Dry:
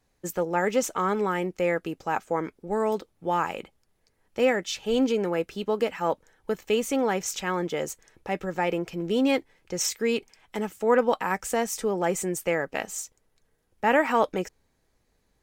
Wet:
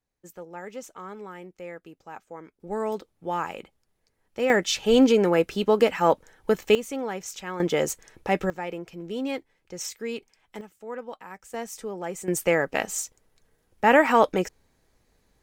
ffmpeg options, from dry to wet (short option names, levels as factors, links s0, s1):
-af "asetnsamples=n=441:p=0,asendcmd='2.6 volume volume -3dB;4.5 volume volume 6dB;6.75 volume volume -6dB;7.6 volume volume 5.5dB;8.5 volume volume -7dB;10.61 volume volume -15dB;11.54 volume volume -7.5dB;12.28 volume volume 4dB',volume=0.2"